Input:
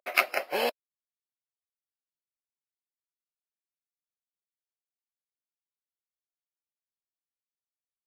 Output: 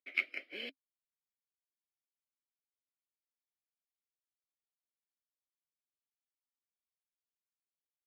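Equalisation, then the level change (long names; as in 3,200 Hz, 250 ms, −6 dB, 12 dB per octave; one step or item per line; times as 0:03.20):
formant filter i
parametric band 250 Hz −7 dB 0.4 octaves
+1.0 dB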